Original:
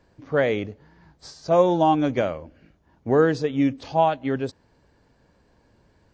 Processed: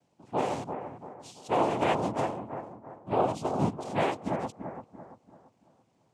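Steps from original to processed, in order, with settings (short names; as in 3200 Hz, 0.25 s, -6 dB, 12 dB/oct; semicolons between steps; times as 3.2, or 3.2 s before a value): Chebyshev band-stop 820–2100 Hz, order 2; noise vocoder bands 4; on a send: analogue delay 0.338 s, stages 4096, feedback 39%, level -8 dB; on the sum: gain -7.5 dB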